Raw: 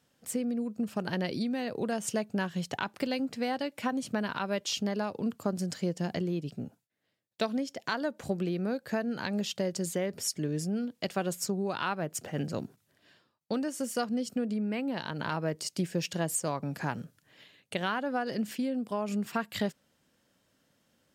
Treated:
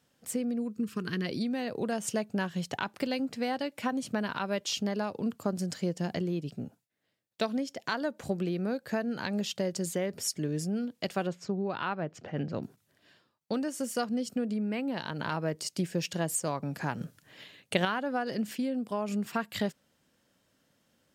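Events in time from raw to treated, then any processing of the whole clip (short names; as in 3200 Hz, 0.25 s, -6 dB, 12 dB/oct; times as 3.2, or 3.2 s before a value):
0.7–1.26 spectral gain 490–1000 Hz -16 dB
11.27–12.63 air absorption 200 m
17.01–17.85 gain +6 dB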